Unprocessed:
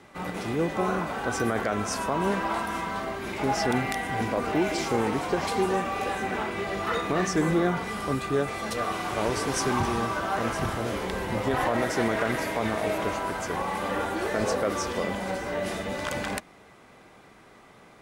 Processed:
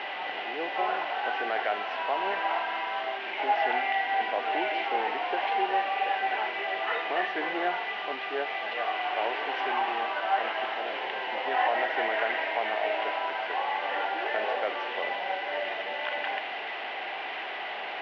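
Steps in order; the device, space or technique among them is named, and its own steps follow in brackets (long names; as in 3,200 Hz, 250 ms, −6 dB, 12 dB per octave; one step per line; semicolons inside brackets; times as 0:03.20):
digital answering machine (band-pass filter 390–3,300 Hz; linear delta modulator 32 kbit/s, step −30 dBFS; loudspeaker in its box 470–3,100 Hz, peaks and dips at 510 Hz −4 dB, 760 Hz +7 dB, 1,200 Hz −8 dB, 1,900 Hz +4 dB, 2,900 Hz +8 dB)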